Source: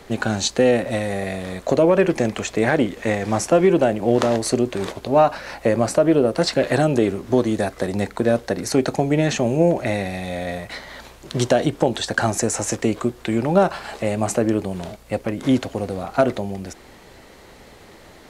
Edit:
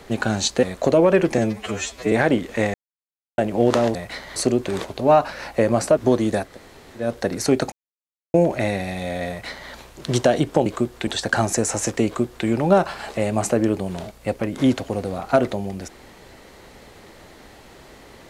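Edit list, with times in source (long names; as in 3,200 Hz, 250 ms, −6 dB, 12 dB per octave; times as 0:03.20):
0:00.63–0:01.48: remove
0:02.23–0:02.60: time-stretch 2×
0:03.22–0:03.86: silence
0:06.04–0:07.23: remove
0:07.73–0:08.32: fill with room tone, crossfade 0.24 s
0:08.98–0:09.60: silence
0:10.55–0:10.96: duplicate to 0:04.43
0:12.90–0:13.31: duplicate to 0:11.92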